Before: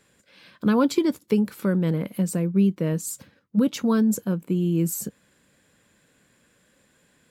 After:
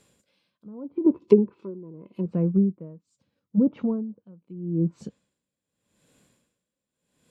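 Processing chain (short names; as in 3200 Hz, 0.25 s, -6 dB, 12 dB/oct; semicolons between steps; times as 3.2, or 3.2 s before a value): harmonic-percussive split percussive -3 dB; treble ducked by the level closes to 850 Hz, closed at -17 dBFS; bell 1700 Hz -9.5 dB 0.71 oct; treble ducked by the level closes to 1100 Hz, closed at -19.5 dBFS; 1.06–2.26 small resonant body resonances 370/1000/2600 Hz, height 15 dB, ringing for 45 ms; dB-linear tremolo 0.81 Hz, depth 25 dB; gain +2 dB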